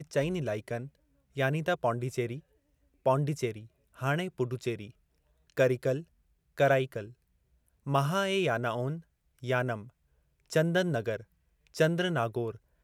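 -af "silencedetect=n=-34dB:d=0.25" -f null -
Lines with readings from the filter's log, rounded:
silence_start: 0.85
silence_end: 1.37 | silence_duration: 0.52
silence_start: 2.36
silence_end: 3.06 | silence_duration: 0.70
silence_start: 3.58
silence_end: 4.02 | silence_duration: 0.43
silence_start: 4.84
silence_end: 5.58 | silence_duration: 0.73
silence_start: 6.00
silence_end: 6.58 | silence_duration: 0.57
silence_start: 7.04
silence_end: 7.87 | silence_duration: 0.83
silence_start: 8.96
silence_end: 9.44 | silence_duration: 0.48
silence_start: 9.81
silence_end: 10.52 | silence_duration: 0.72
silence_start: 11.16
silence_end: 11.76 | silence_duration: 0.60
silence_start: 12.51
silence_end: 12.84 | silence_duration: 0.32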